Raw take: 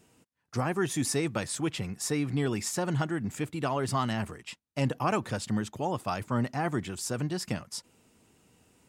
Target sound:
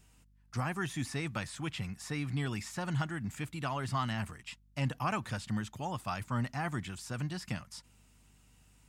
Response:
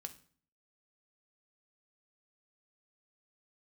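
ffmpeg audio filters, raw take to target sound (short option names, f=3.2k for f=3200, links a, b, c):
-filter_complex "[0:a]acrossover=split=3400[a][b];[b]acompressor=threshold=-45dB:ratio=4:attack=1:release=60[c];[a][c]amix=inputs=2:normalize=0,aeval=exprs='val(0)+0.000794*(sin(2*PI*50*n/s)+sin(2*PI*2*50*n/s)/2+sin(2*PI*3*50*n/s)/3+sin(2*PI*4*50*n/s)/4+sin(2*PI*5*50*n/s)/5)':c=same,equalizer=f=420:w=0.91:g=-12,volume=-1dB"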